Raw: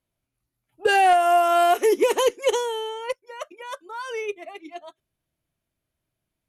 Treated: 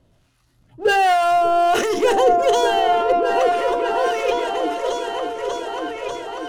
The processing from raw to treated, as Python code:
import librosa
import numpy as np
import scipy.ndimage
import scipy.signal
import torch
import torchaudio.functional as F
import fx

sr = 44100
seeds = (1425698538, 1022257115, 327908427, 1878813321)

p1 = scipy.signal.sosfilt(scipy.signal.butter(2, 6900.0, 'lowpass', fs=sr, output='sos'), x)
p2 = fx.power_curve(p1, sr, exponent=0.7)
p3 = fx.low_shelf(p2, sr, hz=240.0, db=4.0)
p4 = fx.notch(p3, sr, hz=2300.0, q=8.4)
p5 = fx.level_steps(p4, sr, step_db=11)
p6 = p4 + (p5 * librosa.db_to_amplitude(-0.5))
p7 = fx.harmonic_tremolo(p6, sr, hz=1.3, depth_pct=70, crossover_hz=750.0)
p8 = fx.hum_notches(p7, sr, base_hz=50, count=9)
p9 = fx.echo_opening(p8, sr, ms=592, hz=200, octaves=2, feedback_pct=70, wet_db=0)
y = fx.sustainer(p9, sr, db_per_s=46.0)